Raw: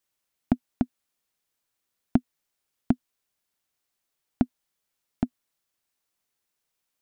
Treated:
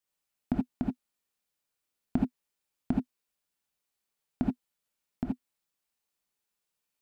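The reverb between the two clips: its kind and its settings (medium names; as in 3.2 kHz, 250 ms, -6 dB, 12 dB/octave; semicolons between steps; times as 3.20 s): gated-style reverb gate 100 ms rising, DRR -1 dB; trim -7.5 dB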